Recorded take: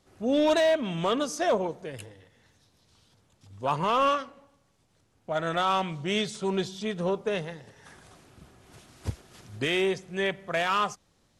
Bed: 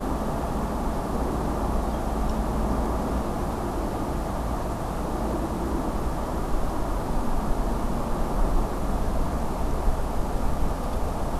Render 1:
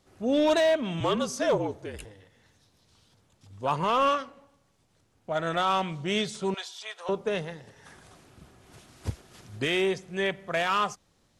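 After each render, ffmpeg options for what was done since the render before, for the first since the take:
-filter_complex "[0:a]asettb=1/sr,asplit=3[s0][s1][s2];[s0]atrim=end=1.004[s3];[s1]atrim=start=1:end=2.05,asetpts=PTS-STARTPTS,afade=t=in:d=0.004:c=qsin,afade=t=out:st=1.046:d=0.004:c=qsin,afreqshift=-50[s4];[s2]atrim=start=2.046[s5];[s3][s4]acrossfade=d=0.004:c1=hsin:c2=qsin[s6];[s6][s5]acrossfade=d=0.004:c1=qsin:c2=hsin,asettb=1/sr,asplit=3[s7][s8][s9];[s7]atrim=end=6.544[s10];[s8]atrim=start=6.54:end=7.09,asetpts=PTS-STARTPTS,afade=t=in:d=0.004:c=qsin,afade=t=out:st=0.546:d=0.004:c=qsin,highpass=f=740:w=0.5412,highpass=f=740:w=1.3066[s11];[s9]atrim=start=7.086[s12];[s10][s11]acrossfade=d=0.004:c1=hsin:c2=qsin[s13];[s13][s12]acrossfade=d=0.004:c1=qsin:c2=hsin"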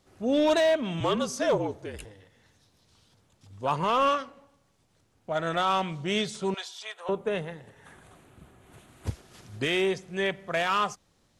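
-filter_complex "[0:a]asettb=1/sr,asplit=3[s0][s1][s2];[s0]atrim=end=6.924[s3];[s1]atrim=start=6.92:end=9.07,asetpts=PTS-STARTPTS,afade=t=in:d=0.004:c=qsin,afade=t=out:st=2.146:d=0.004:c=qsin,equalizer=f=5200:t=o:w=0.61:g=-13[s4];[s2]atrim=start=9.066[s5];[s3][s4]acrossfade=d=0.004:c1=hsin:c2=qsin[s6];[s6][s5]acrossfade=d=0.004:c1=qsin:c2=hsin"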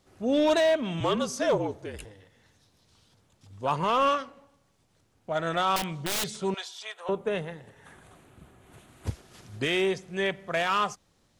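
-filter_complex "[0:a]asettb=1/sr,asplit=3[s0][s1][s2];[s0]atrim=end=5.764[s3];[s1]atrim=start=5.76:end=6.28,asetpts=PTS-STARTPTS,afade=t=in:d=0.004:c=qsin,afade=t=out:st=0.516:d=0.004:c=qsin,aeval=exprs='(mod(15*val(0)+1,2)-1)/15':c=same[s4];[s2]atrim=start=6.276[s5];[s3][s4]acrossfade=d=0.004:c1=hsin:c2=qsin[s6];[s6][s5]acrossfade=d=0.004:c1=qsin:c2=hsin"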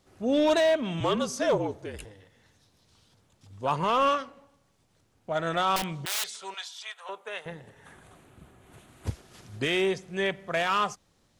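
-filter_complex "[0:a]asettb=1/sr,asplit=3[s0][s1][s2];[s0]atrim=end=6.054[s3];[s1]atrim=start=6.05:end=7.46,asetpts=PTS-STARTPTS,afade=t=in:d=0.004:c=qsin,afade=t=out:st=1.406:d=0.004:c=qsin,highpass=940[s4];[s2]atrim=start=7.456[s5];[s3][s4]acrossfade=d=0.004:c1=hsin:c2=qsin[s6];[s6][s5]acrossfade=d=0.004:c1=qsin:c2=hsin"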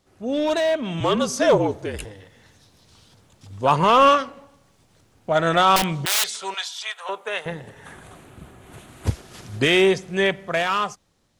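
-af "dynaudnorm=f=200:g=11:m=2.99"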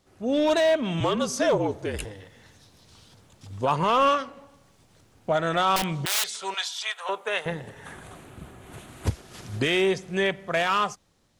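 -af "alimiter=limit=0.2:level=0:latency=1:release=441"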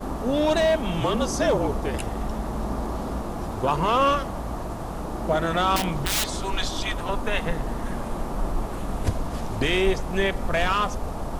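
-filter_complex "[1:a]volume=0.708[s0];[0:a][s0]amix=inputs=2:normalize=0"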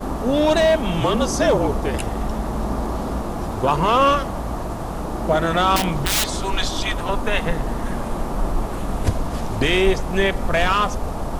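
-af "volume=1.68"

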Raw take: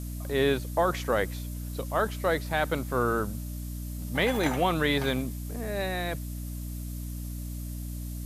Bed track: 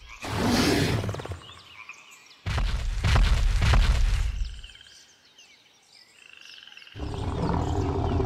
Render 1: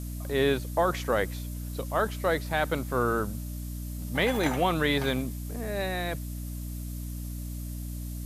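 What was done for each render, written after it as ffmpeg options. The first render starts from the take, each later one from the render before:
-af anull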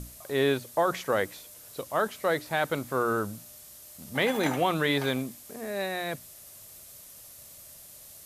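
-af "bandreject=f=60:t=h:w=6,bandreject=f=120:t=h:w=6,bandreject=f=180:t=h:w=6,bandreject=f=240:t=h:w=6,bandreject=f=300:t=h:w=6"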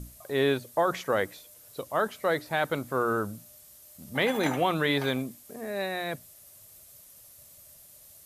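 -af "afftdn=nr=6:nf=-49"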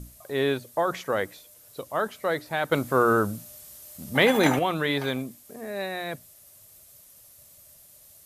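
-filter_complex "[0:a]asplit=3[s0][s1][s2];[s0]atrim=end=2.722[s3];[s1]atrim=start=2.718:end=4.592,asetpts=PTS-STARTPTS,volume=2.11[s4];[s2]atrim=start=4.588[s5];[s3][s4]acrossfade=d=0.004:c1=hsin:c2=hsin[s6];[s6][s5]acrossfade=d=0.004:c1=hsin:c2=hsin"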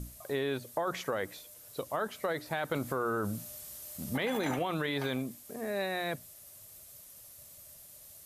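-af "alimiter=limit=0.119:level=0:latency=1:release=23,acompressor=threshold=0.0316:ratio=3"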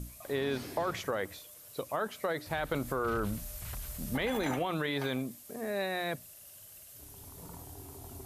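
-filter_complex "[1:a]volume=0.075[s0];[0:a][s0]amix=inputs=2:normalize=0"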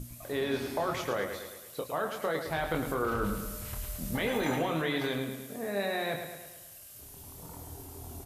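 -filter_complex "[0:a]asplit=2[s0][s1];[s1]adelay=25,volume=0.501[s2];[s0][s2]amix=inputs=2:normalize=0,asplit=2[s3][s4];[s4]aecho=0:1:108|216|324|432|540|648|756:0.422|0.232|0.128|0.0702|0.0386|0.0212|0.0117[s5];[s3][s5]amix=inputs=2:normalize=0"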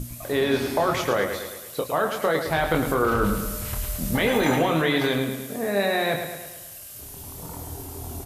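-af "volume=2.82"

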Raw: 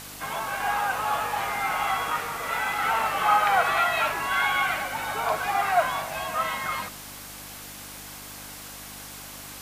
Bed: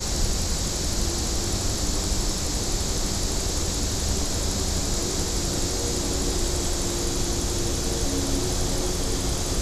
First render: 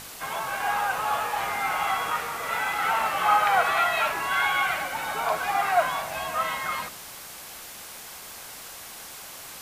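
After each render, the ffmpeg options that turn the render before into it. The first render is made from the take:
-af "bandreject=f=50:t=h:w=4,bandreject=f=100:t=h:w=4,bandreject=f=150:t=h:w=4,bandreject=f=200:t=h:w=4,bandreject=f=250:t=h:w=4,bandreject=f=300:t=h:w=4,bandreject=f=350:t=h:w=4,bandreject=f=400:t=h:w=4,bandreject=f=450:t=h:w=4"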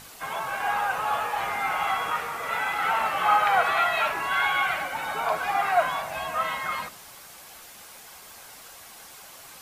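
-af "afftdn=nr=6:nf=-42"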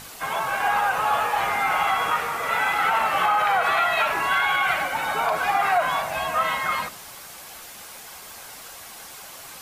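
-af "alimiter=limit=0.141:level=0:latency=1:release=75,acontrast=27"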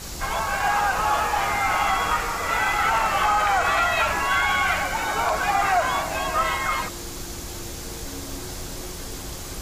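-filter_complex "[1:a]volume=0.335[s0];[0:a][s0]amix=inputs=2:normalize=0"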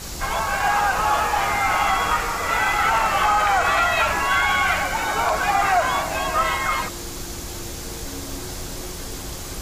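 -af "volume=1.26"

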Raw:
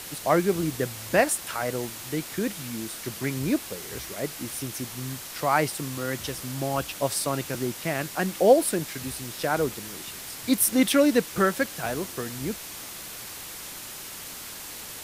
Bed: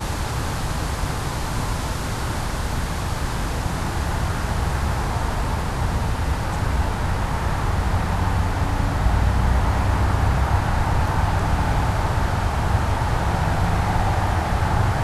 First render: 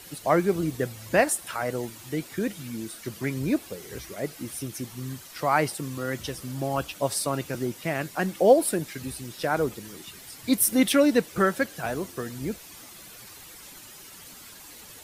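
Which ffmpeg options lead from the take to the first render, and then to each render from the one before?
-af "afftdn=nr=10:nf=-40"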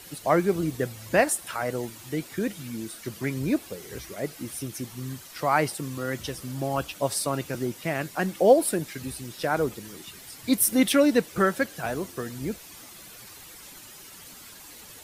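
-af anull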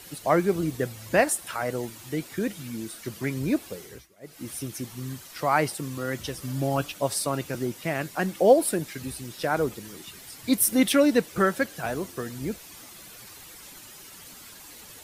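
-filter_complex "[0:a]asettb=1/sr,asplit=3[s0][s1][s2];[s0]atrim=end=6.424[s3];[s1]atrim=start=6.42:end=6.92,asetpts=PTS-STARTPTS,afade=t=in:d=0.004:c=qsin,afade=t=out:st=0.496:d=0.004:c=qsin,aecho=1:1:6.9:0.65,atrim=end_sample=22050[s4];[s2]atrim=start=6.916[s5];[s3][s4]acrossfade=d=0.004:c1=hsin:c2=qsin[s6];[s6][s5]acrossfade=d=0.004:c1=qsin:c2=hsin,asplit=3[s7][s8][s9];[s7]atrim=end=4.08,asetpts=PTS-STARTPTS,afade=t=out:st=3.78:d=0.3:silence=0.0891251[s10];[s8]atrim=start=4.08:end=4.2,asetpts=PTS-STARTPTS,volume=0.0891[s11];[s9]atrim=start=4.2,asetpts=PTS-STARTPTS,afade=t=in:d=0.3:silence=0.0891251[s12];[s10][s11][s12]concat=n=3:v=0:a=1"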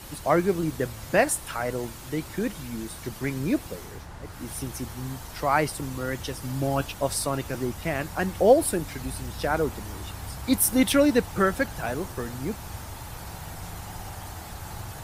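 -filter_complex "[1:a]volume=0.119[s0];[0:a][s0]amix=inputs=2:normalize=0"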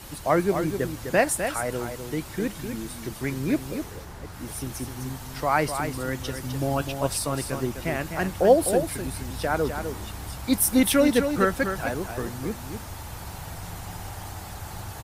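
-af "aecho=1:1:254:0.422"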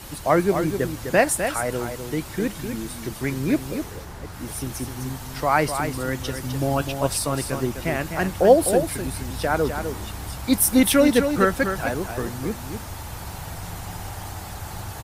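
-af "volume=1.41"

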